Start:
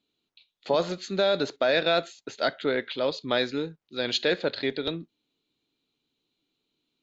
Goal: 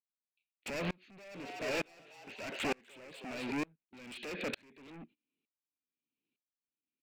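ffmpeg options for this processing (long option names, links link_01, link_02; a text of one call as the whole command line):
ffmpeg -i in.wav -filter_complex "[0:a]agate=range=-24dB:threshold=-50dB:ratio=16:detection=peak,equalizer=frequency=240:width=0.9:gain=12,acompressor=threshold=-27dB:ratio=10,alimiter=limit=-24dB:level=0:latency=1:release=34,asoftclip=type=hard:threshold=-39.5dB,lowpass=frequency=2500:width_type=q:width=5.6,aeval=exprs='0.0168*(abs(mod(val(0)/0.0168+3,4)-2)-1)':channel_layout=same,asplit=3[link_01][link_02][link_03];[link_01]afade=type=out:start_time=1.34:duration=0.02[link_04];[link_02]asplit=5[link_05][link_06][link_07][link_08][link_09];[link_06]adelay=247,afreqshift=130,volume=-4.5dB[link_10];[link_07]adelay=494,afreqshift=260,volume=-14.1dB[link_11];[link_08]adelay=741,afreqshift=390,volume=-23.8dB[link_12];[link_09]adelay=988,afreqshift=520,volume=-33.4dB[link_13];[link_05][link_10][link_11][link_12][link_13]amix=inputs=5:normalize=0,afade=type=in:start_time=1.34:duration=0.02,afade=type=out:start_time=3.51:duration=0.02[link_14];[link_03]afade=type=in:start_time=3.51:duration=0.02[link_15];[link_04][link_14][link_15]amix=inputs=3:normalize=0,aeval=exprs='val(0)*pow(10,-32*if(lt(mod(-1.1*n/s,1),2*abs(-1.1)/1000),1-mod(-1.1*n/s,1)/(2*abs(-1.1)/1000),(mod(-1.1*n/s,1)-2*abs(-1.1)/1000)/(1-2*abs(-1.1)/1000))/20)':channel_layout=same,volume=8dB" out.wav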